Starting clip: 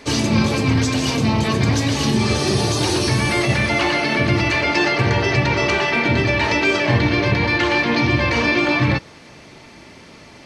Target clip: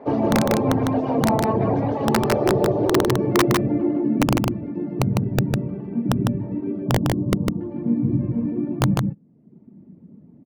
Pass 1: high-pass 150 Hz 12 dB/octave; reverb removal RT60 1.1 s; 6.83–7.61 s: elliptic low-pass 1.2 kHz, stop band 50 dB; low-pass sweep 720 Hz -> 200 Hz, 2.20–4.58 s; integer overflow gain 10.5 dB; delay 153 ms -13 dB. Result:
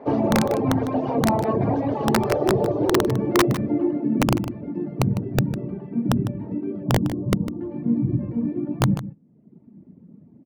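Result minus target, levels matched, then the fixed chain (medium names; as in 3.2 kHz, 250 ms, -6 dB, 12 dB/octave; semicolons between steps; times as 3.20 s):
echo-to-direct -10 dB
high-pass 150 Hz 12 dB/octave; reverb removal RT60 1.1 s; 6.83–7.61 s: elliptic low-pass 1.2 kHz, stop band 50 dB; low-pass sweep 720 Hz -> 200 Hz, 2.20–4.58 s; integer overflow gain 10.5 dB; delay 153 ms -3 dB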